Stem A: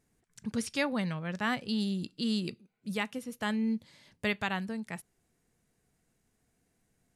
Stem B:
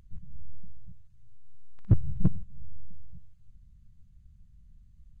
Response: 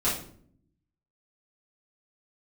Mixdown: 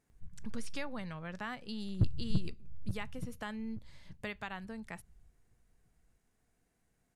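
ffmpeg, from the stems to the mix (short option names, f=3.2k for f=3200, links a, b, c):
-filter_complex "[0:a]equalizer=f=1.1k:w=0.59:g=4.5,acompressor=threshold=-36dB:ratio=2.5,volume=-5dB[a];[1:a]adelay=100,volume=-7.5dB,asplit=2[b][c];[c]volume=-10.5dB,aecho=0:1:876|1752|2628|3504:1|0.26|0.0676|0.0176[d];[a][b][d]amix=inputs=3:normalize=0"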